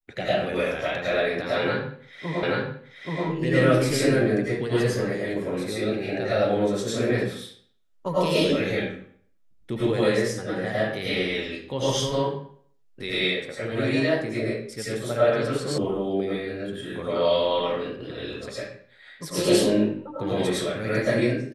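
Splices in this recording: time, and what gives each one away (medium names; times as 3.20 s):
2.43 s: repeat of the last 0.83 s
15.78 s: sound stops dead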